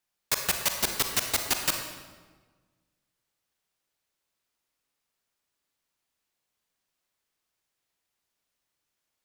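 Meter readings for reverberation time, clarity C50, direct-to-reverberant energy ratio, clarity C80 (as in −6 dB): 1.4 s, 5.0 dB, 4.0 dB, 7.0 dB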